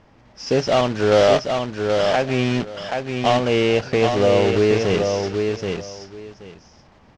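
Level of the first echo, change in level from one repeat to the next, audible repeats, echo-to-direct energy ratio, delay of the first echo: −5.0 dB, −15.0 dB, 2, −5.0 dB, 777 ms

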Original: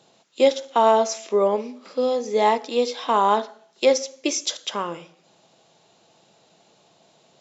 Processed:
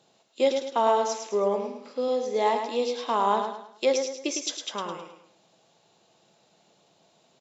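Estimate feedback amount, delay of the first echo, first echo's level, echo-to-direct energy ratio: 37%, 106 ms, −6.5 dB, −6.0 dB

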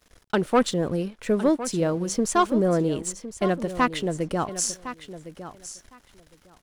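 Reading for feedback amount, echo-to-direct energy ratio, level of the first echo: 15%, −13.0 dB, −13.0 dB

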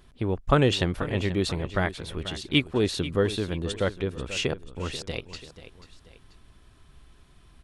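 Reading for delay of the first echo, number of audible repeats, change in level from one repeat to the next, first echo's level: 487 ms, 2, −7.0 dB, −14.0 dB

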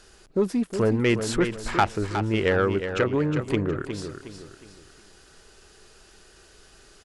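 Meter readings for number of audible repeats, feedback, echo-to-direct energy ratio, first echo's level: 3, 36%, −8.0 dB, −8.5 dB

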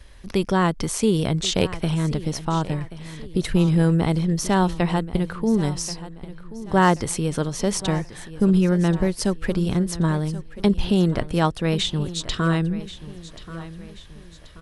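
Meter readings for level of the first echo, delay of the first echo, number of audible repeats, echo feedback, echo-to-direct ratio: −15.5 dB, 1,082 ms, 3, 43%, −14.5 dB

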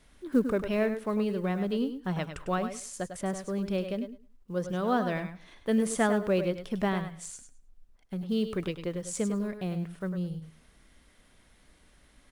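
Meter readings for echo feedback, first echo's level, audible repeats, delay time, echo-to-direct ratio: repeats not evenly spaced, −9.5 dB, 2, 100 ms, −8.5 dB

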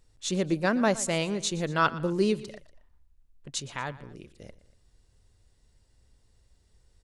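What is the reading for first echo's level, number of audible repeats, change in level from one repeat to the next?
−18.0 dB, 2, −5.0 dB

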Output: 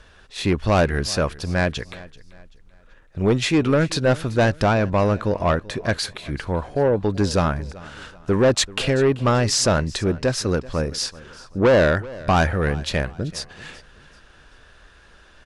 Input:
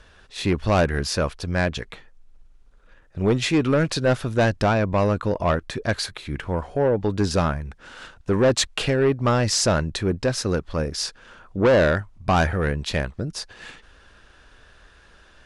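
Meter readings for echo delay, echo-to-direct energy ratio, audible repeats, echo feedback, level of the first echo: 385 ms, −19.5 dB, 2, 36%, −20.0 dB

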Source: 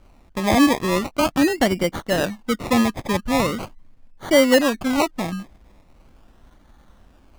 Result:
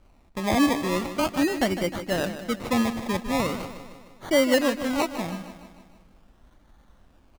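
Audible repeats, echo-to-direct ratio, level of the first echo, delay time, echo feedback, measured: 5, −10.0 dB, −11.5 dB, 153 ms, 56%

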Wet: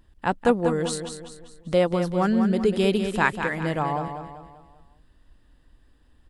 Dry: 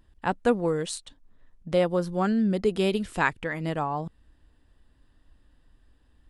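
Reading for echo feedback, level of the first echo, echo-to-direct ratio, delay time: 44%, −8.0 dB, −7.0 dB, 195 ms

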